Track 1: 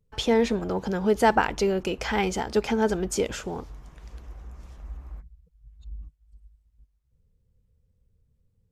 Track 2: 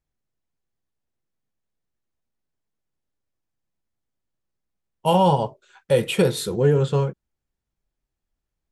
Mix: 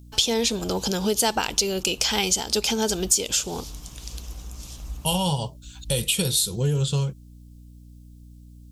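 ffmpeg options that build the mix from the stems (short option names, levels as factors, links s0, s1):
-filter_complex "[0:a]volume=1.41[s0];[1:a]asubboost=boost=3.5:cutoff=180,aeval=exprs='val(0)+0.01*(sin(2*PI*60*n/s)+sin(2*PI*2*60*n/s)/2+sin(2*PI*3*60*n/s)/3+sin(2*PI*4*60*n/s)/4+sin(2*PI*5*60*n/s)/5)':c=same,volume=0.596[s1];[s0][s1]amix=inputs=2:normalize=0,aexciter=amount=6.9:drive=6.4:freq=2800,acompressor=threshold=0.0794:ratio=2.5"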